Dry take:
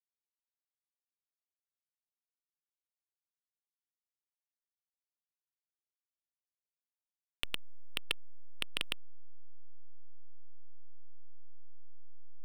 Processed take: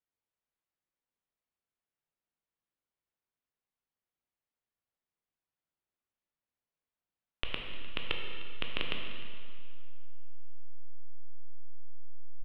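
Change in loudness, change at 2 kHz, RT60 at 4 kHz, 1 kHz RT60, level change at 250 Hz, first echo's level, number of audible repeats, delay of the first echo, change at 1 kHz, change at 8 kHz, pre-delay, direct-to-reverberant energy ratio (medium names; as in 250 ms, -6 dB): +0.5 dB, +2.5 dB, 2.0 s, 2.1 s, +8.5 dB, -17.5 dB, 1, 303 ms, +5.5 dB, under -20 dB, 7 ms, 1.0 dB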